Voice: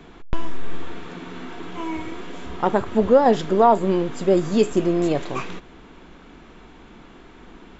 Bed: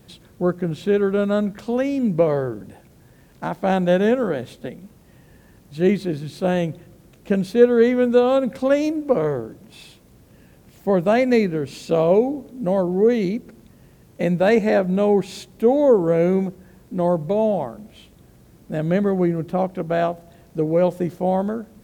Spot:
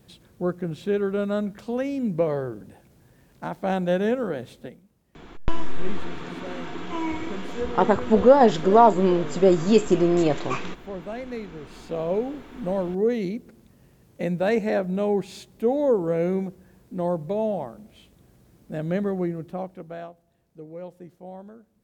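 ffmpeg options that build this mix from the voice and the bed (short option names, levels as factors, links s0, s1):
-filter_complex "[0:a]adelay=5150,volume=1.06[s0];[1:a]volume=1.88,afade=t=out:st=4.6:d=0.24:silence=0.266073,afade=t=in:st=11.51:d=1.1:silence=0.281838,afade=t=out:st=19.07:d=1.06:silence=0.199526[s1];[s0][s1]amix=inputs=2:normalize=0"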